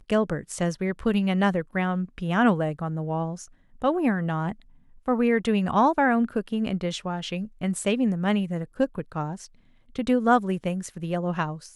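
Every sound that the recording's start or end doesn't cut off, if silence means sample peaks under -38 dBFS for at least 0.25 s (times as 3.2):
3.82–4.53
5.08–9.46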